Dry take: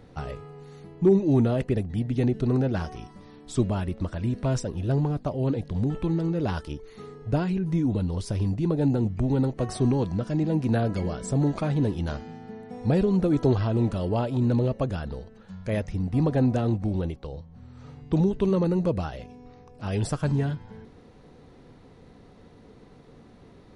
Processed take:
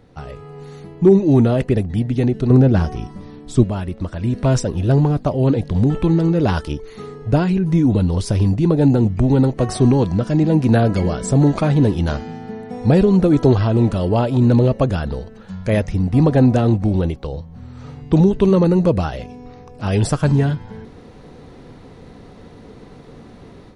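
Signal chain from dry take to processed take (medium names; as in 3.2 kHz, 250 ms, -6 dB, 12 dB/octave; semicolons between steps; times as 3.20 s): 2.50–3.64 s: bass shelf 440 Hz +8 dB; level rider gain up to 10.5 dB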